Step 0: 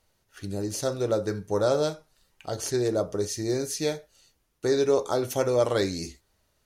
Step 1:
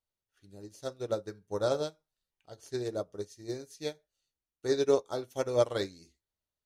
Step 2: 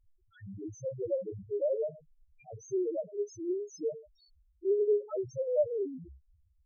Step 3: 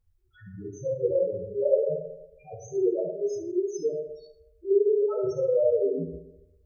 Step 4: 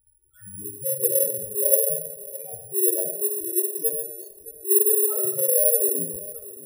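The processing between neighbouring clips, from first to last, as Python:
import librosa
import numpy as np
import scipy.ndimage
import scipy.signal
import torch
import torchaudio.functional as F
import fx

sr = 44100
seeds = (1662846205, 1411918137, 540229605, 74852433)

y1 = fx.peak_eq(x, sr, hz=3500.0, db=3.5, octaves=0.44)
y1 = fx.upward_expand(y1, sr, threshold_db=-34.0, expansion=2.5)
y1 = y1 * 10.0 ** (-1.0 / 20.0)
y2 = fx.power_curve(y1, sr, exponent=0.5)
y2 = fx.spec_topn(y2, sr, count=1)
y3 = fx.rev_fdn(y2, sr, rt60_s=0.98, lf_ratio=0.75, hf_ratio=0.4, size_ms=37.0, drr_db=-6.0)
y4 = fx.echo_feedback(y3, sr, ms=619, feedback_pct=44, wet_db=-18.0)
y4 = (np.kron(scipy.signal.resample_poly(y4, 1, 4), np.eye(4)[0]) * 4)[:len(y4)]
y4 = y4 * 10.0 ** (-3.0 / 20.0)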